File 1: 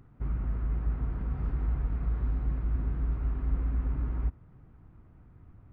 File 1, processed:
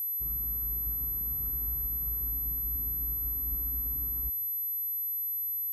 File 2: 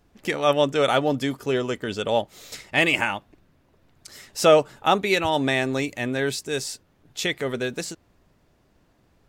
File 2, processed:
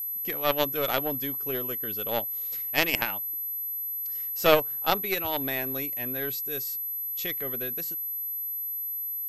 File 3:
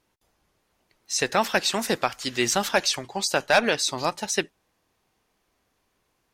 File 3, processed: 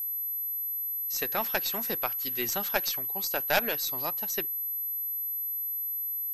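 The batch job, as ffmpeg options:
-af "agate=range=0.501:threshold=0.00355:ratio=16:detection=peak,aeval=exprs='0.596*(cos(1*acos(clip(val(0)/0.596,-1,1)))-cos(1*PI/2))+0.133*(cos(2*acos(clip(val(0)/0.596,-1,1)))-cos(2*PI/2))+0.133*(cos(3*acos(clip(val(0)/0.596,-1,1)))-cos(3*PI/2))+0.00531*(cos(8*acos(clip(val(0)/0.596,-1,1)))-cos(8*PI/2))':c=same,aeval=exprs='val(0)+0.0355*sin(2*PI*12000*n/s)':c=same,volume=0.891"

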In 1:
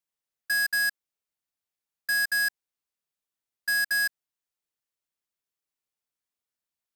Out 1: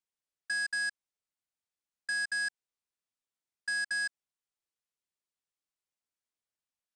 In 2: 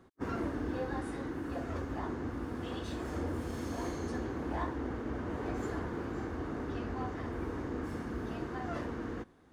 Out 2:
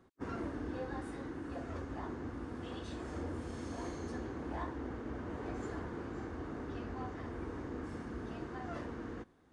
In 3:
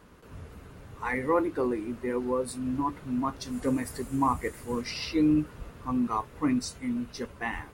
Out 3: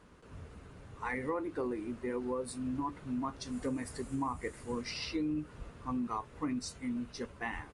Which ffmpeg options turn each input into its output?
-af "acompressor=threshold=0.0447:ratio=6,aresample=22050,aresample=44100,volume=0.596"

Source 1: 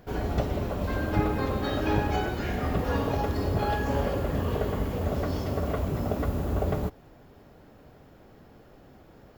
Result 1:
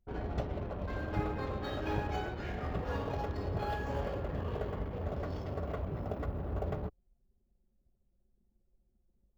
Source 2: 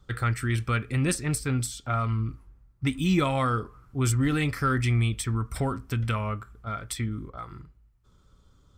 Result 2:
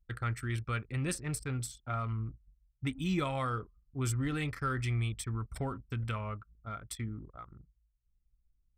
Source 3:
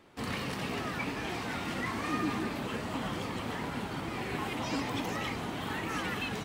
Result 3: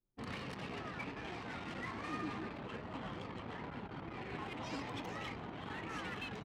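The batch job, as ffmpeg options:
-af "anlmdn=1.58,adynamicequalizer=threshold=0.00708:dfrequency=250:dqfactor=2.6:tfrequency=250:tqfactor=2.6:attack=5:release=100:ratio=0.375:range=2.5:mode=cutabove:tftype=bell,volume=0.398"

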